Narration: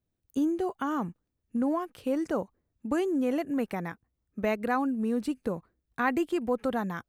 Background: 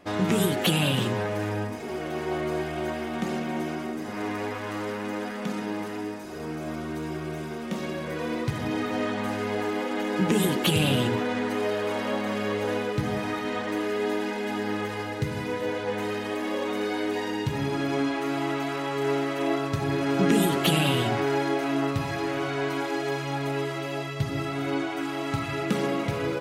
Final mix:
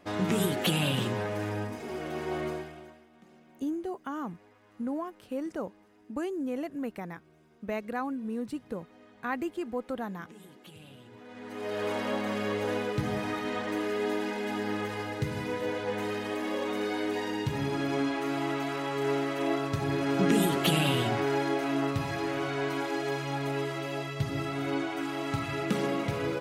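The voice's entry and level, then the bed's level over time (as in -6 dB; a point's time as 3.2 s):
3.25 s, -5.5 dB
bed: 2.47 s -4 dB
3.08 s -28 dB
11.05 s -28 dB
11.83 s -3 dB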